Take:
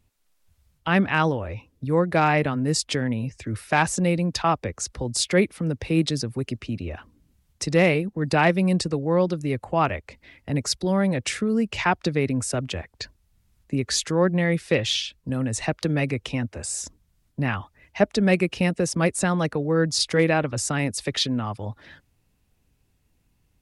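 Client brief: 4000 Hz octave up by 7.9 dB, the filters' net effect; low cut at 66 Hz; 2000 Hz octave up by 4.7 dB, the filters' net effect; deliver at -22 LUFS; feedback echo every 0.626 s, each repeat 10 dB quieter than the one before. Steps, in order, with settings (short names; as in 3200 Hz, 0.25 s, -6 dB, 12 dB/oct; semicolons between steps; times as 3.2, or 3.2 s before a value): HPF 66 Hz; bell 2000 Hz +3.5 dB; bell 4000 Hz +9 dB; feedback echo 0.626 s, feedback 32%, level -10 dB; gain -0.5 dB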